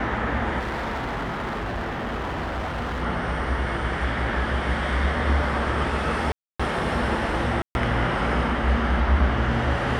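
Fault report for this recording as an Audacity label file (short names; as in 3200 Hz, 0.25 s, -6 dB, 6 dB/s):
0.590000	3.030000	clipped -25 dBFS
6.320000	6.590000	gap 0.275 s
7.620000	7.750000	gap 0.131 s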